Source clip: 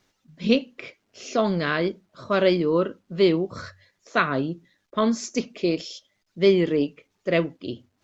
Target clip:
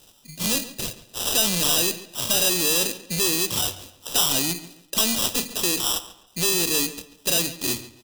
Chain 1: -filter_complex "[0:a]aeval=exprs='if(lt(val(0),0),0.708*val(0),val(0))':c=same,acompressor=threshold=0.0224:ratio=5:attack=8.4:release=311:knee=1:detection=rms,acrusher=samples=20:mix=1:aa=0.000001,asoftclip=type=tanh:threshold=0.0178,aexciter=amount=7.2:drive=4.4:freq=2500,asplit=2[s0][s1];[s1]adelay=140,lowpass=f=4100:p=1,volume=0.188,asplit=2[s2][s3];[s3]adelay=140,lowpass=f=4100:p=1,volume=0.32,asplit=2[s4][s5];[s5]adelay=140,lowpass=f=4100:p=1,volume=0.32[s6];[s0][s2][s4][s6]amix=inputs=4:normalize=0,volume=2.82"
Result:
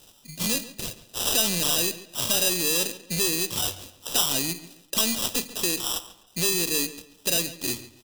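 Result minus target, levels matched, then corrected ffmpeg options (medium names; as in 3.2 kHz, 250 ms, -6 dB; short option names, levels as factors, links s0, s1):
compression: peak gain reduction +7 dB
-filter_complex "[0:a]aeval=exprs='if(lt(val(0),0),0.708*val(0),val(0))':c=same,acompressor=threshold=0.0596:ratio=5:attack=8.4:release=311:knee=1:detection=rms,acrusher=samples=20:mix=1:aa=0.000001,asoftclip=type=tanh:threshold=0.0178,aexciter=amount=7.2:drive=4.4:freq=2500,asplit=2[s0][s1];[s1]adelay=140,lowpass=f=4100:p=1,volume=0.188,asplit=2[s2][s3];[s3]adelay=140,lowpass=f=4100:p=1,volume=0.32,asplit=2[s4][s5];[s5]adelay=140,lowpass=f=4100:p=1,volume=0.32[s6];[s0][s2][s4][s6]amix=inputs=4:normalize=0,volume=2.82"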